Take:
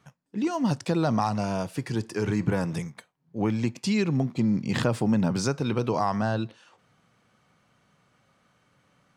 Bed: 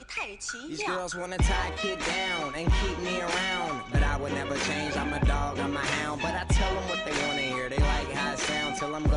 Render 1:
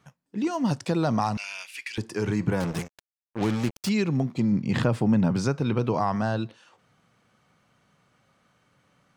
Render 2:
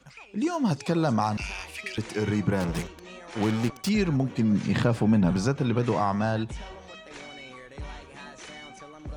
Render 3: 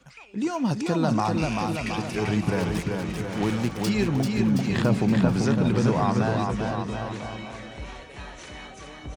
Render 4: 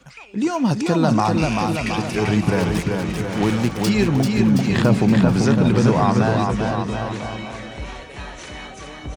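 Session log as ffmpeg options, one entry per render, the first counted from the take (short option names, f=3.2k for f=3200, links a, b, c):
-filter_complex "[0:a]asettb=1/sr,asplit=3[a][b][c];[a]atrim=end=1.374[d];[b]atrim=start=1.37:end=1.98,asetpts=PTS-STARTPTS,afade=t=in:d=0.004:c=qsin,afade=t=out:st=0.606:d=0.004:c=qsin,highpass=f=2.4k:t=q:w=4.4[e];[c]atrim=start=1.976[f];[d][e]acrossfade=d=0.004:c1=hsin:c2=qsin[g];[g][f]acrossfade=d=0.004:c1=qsin:c2=hsin,asettb=1/sr,asplit=3[h][i][j];[h]atrim=end=2.604[k];[i]atrim=start=2.6:end=3.89,asetpts=PTS-STARTPTS,afade=t=in:d=0.004:c=qsin,afade=t=out:st=1.286:d=0.004:c=qsin,acrusher=bits=4:mix=0:aa=0.5[l];[j]atrim=start=3.886[m];[k][l]acrossfade=d=0.004:c1=hsin:c2=qsin[n];[n][m]acrossfade=d=0.004:c1=qsin:c2=hsin,asettb=1/sr,asplit=3[o][p][q];[o]atrim=end=4.524[r];[p]atrim=start=4.52:end=6.16,asetpts=PTS-STARTPTS,afade=t=in:d=0.004:c=qsin,afade=t=out:st=1.636:d=0.004:c=qsin,bass=f=250:g=3,treble=f=4k:g=-6[s];[q]atrim=start=6.156[t];[r][s]acrossfade=d=0.004:c1=hsin:c2=qsin[u];[u][t]acrossfade=d=0.004:c1=qsin:c2=hsin"
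-filter_complex "[1:a]volume=-14dB[a];[0:a][a]amix=inputs=2:normalize=0"
-af "aecho=1:1:390|721.5|1003|1243|1446:0.631|0.398|0.251|0.158|0.1"
-af "volume=6dB,alimiter=limit=-3dB:level=0:latency=1"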